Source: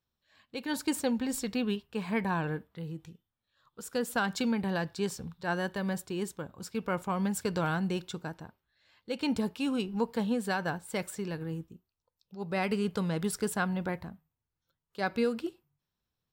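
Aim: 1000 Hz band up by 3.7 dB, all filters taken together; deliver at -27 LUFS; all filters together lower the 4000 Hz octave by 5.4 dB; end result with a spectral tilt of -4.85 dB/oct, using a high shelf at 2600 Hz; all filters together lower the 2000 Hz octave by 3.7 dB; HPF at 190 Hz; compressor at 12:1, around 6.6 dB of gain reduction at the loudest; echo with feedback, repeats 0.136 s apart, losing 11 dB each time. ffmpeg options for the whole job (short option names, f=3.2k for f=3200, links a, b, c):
-af "highpass=190,equalizer=f=1k:t=o:g=6.5,equalizer=f=2k:t=o:g=-8.5,highshelf=f=2.6k:g=4,equalizer=f=4k:t=o:g=-8,acompressor=threshold=-30dB:ratio=12,aecho=1:1:136|272|408:0.282|0.0789|0.0221,volume=10dB"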